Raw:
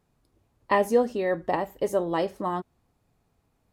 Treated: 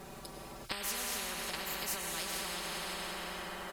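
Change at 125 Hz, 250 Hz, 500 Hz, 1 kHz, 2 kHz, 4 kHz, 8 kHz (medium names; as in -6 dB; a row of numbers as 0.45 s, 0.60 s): -10.5 dB, -16.0 dB, -20.0 dB, -13.0 dB, -3.5 dB, +8.0 dB, +10.5 dB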